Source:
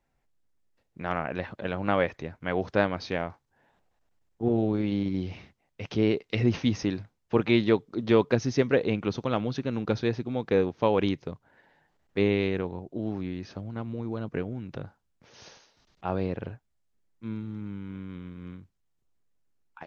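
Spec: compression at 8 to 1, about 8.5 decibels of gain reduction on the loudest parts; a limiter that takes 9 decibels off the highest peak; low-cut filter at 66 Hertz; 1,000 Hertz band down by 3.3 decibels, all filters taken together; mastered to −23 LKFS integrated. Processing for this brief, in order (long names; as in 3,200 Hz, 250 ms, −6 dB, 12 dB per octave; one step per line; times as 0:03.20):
high-pass filter 66 Hz
parametric band 1,000 Hz −4.5 dB
downward compressor 8 to 1, threshold −26 dBFS
level +13 dB
brickwall limiter −8.5 dBFS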